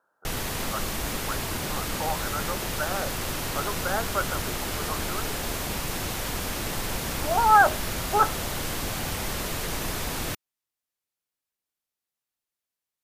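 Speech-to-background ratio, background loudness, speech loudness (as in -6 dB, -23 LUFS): 3.0 dB, -30.0 LUFS, -27.0 LUFS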